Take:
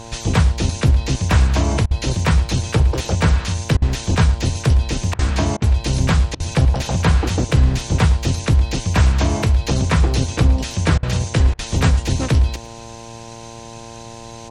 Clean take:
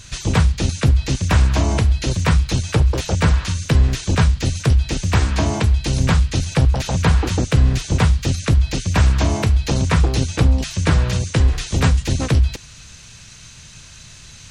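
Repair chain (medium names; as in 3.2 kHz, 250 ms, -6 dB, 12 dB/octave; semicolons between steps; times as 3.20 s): de-hum 114.8 Hz, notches 9; interpolate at 1.86/3.77/5.14/5.57/6.35/10.98/11.54 s, 48 ms; inverse comb 112 ms -17 dB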